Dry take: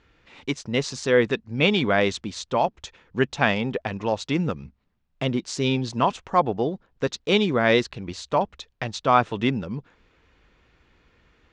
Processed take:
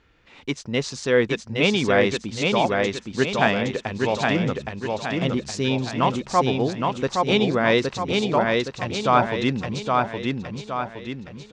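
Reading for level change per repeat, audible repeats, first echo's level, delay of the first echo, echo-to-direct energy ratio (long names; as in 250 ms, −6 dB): −6.5 dB, 5, −3.0 dB, 817 ms, −2.0 dB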